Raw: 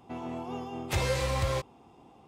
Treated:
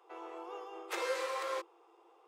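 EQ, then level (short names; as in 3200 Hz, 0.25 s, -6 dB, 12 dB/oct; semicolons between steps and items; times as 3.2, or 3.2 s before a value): rippled Chebyshev high-pass 330 Hz, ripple 9 dB; 0.0 dB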